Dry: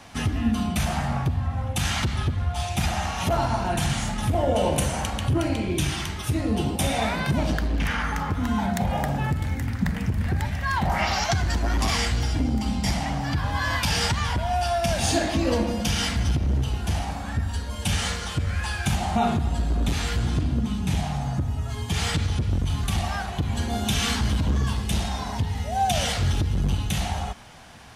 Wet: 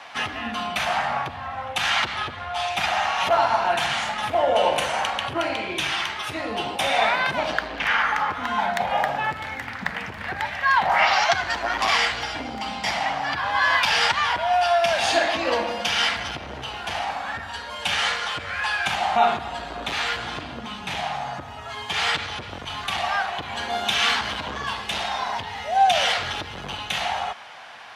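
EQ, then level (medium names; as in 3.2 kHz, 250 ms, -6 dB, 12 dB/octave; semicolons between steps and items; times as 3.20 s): high-pass 240 Hz 6 dB/octave; three-band isolator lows -18 dB, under 560 Hz, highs -17 dB, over 4.2 kHz; +8.5 dB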